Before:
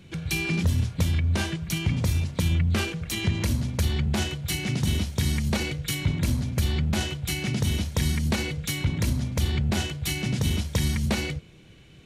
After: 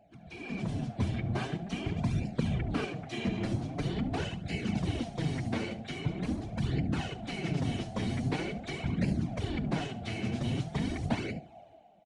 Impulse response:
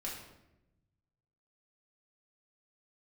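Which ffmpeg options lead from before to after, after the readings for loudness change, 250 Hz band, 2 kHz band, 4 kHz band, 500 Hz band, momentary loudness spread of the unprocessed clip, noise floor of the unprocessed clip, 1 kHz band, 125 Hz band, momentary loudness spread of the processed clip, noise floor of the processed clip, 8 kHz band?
-7.5 dB, -3.5 dB, -8.5 dB, -11.5 dB, -3.0 dB, 4 LU, -50 dBFS, -2.0 dB, -8.5 dB, 5 LU, -53 dBFS, -18.0 dB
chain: -filter_complex "[0:a]aeval=exprs='val(0)+0.00708*sin(2*PI*700*n/s)':c=same,highshelf=f=2k:g=-12,acrossover=split=5800[a][b];[b]aeval=exprs='(mod(266*val(0)+1,2)-1)/266':c=same[c];[a][c]amix=inputs=2:normalize=0,afftfilt=real='hypot(re,im)*cos(2*PI*random(0))':imag='hypot(re,im)*sin(2*PI*random(1))':win_size=512:overlap=0.75,dynaudnorm=f=100:g=11:m=14.5dB,asplit=2[d][e];[e]aecho=0:1:71:0.15[f];[d][f]amix=inputs=2:normalize=0,aresample=22050,aresample=44100,flanger=delay=0.4:depth=8.8:regen=-7:speed=0.44:shape=sinusoidal,highpass=f=200:p=1,volume=-6.5dB"

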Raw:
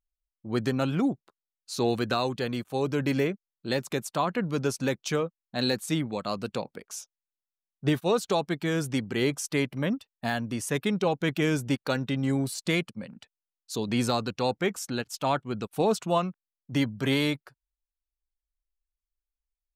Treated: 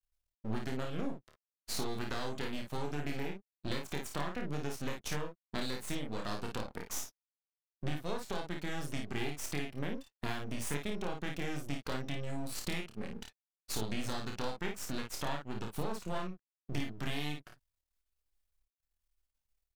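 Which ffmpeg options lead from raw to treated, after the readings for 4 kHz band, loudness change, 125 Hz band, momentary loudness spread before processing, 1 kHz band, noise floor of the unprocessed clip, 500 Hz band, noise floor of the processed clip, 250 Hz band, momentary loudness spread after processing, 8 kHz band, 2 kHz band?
-8.5 dB, -11.0 dB, -9.5 dB, 8 LU, -10.5 dB, under -85 dBFS, -13.0 dB, under -85 dBFS, -12.0 dB, 4 LU, -6.0 dB, -9.0 dB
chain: -af "aeval=exprs='max(val(0),0)':c=same,acompressor=threshold=-40dB:ratio=8,aecho=1:1:28|54:0.562|0.531,volume=5.5dB"

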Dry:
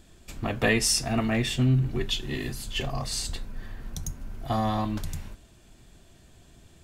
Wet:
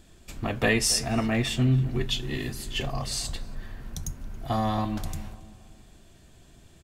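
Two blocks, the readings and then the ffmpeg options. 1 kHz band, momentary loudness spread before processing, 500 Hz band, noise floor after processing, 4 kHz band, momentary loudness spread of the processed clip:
0.0 dB, 17 LU, 0.0 dB, -54 dBFS, 0.0 dB, 17 LU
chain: -filter_complex "[0:a]asplit=2[a][b];[b]adelay=276,lowpass=f=1.5k:p=1,volume=-15.5dB,asplit=2[c][d];[d]adelay=276,lowpass=f=1.5k:p=1,volume=0.45,asplit=2[e][f];[f]adelay=276,lowpass=f=1.5k:p=1,volume=0.45,asplit=2[g][h];[h]adelay=276,lowpass=f=1.5k:p=1,volume=0.45[i];[a][c][e][g][i]amix=inputs=5:normalize=0"

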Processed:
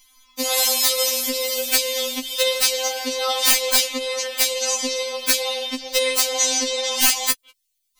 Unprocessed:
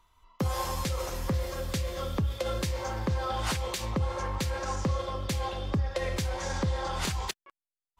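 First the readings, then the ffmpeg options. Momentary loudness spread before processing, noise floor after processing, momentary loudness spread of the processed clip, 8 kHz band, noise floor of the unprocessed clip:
2 LU, -73 dBFS, 8 LU, +21.0 dB, under -85 dBFS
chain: -af "aexciter=amount=8.9:drive=3.2:freq=2.1k,aeval=exprs='(mod(2.82*val(0)+1,2)-1)/2.82':c=same,afftfilt=real='re*3.46*eq(mod(b,12),0)':imag='im*3.46*eq(mod(b,12),0)':win_size=2048:overlap=0.75,volume=4dB"

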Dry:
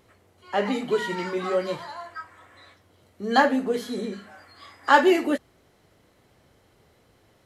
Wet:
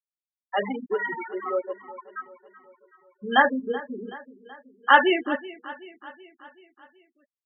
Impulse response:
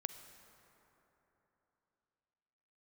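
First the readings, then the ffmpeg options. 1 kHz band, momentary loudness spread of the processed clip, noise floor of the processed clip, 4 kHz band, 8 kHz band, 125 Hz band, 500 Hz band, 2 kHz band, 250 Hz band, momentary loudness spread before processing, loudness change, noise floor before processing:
+0.5 dB, 22 LU, under -85 dBFS, +1.0 dB, under -35 dB, n/a, -3.0 dB, +3.0 dB, -4.5 dB, 19 LU, 0.0 dB, -62 dBFS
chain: -filter_complex "[0:a]equalizer=f=220:w=5.1:g=2.5,aresample=8000,aresample=44100,tiltshelf=f=810:g=-6,afftfilt=real='re*gte(hypot(re,im),0.141)':imag='im*gte(hypot(re,im),0.141)':win_size=1024:overlap=0.75,asplit=2[a][b];[b]aecho=0:1:378|756|1134|1512|1890:0.126|0.0705|0.0395|0.0221|0.0124[c];[a][c]amix=inputs=2:normalize=0"

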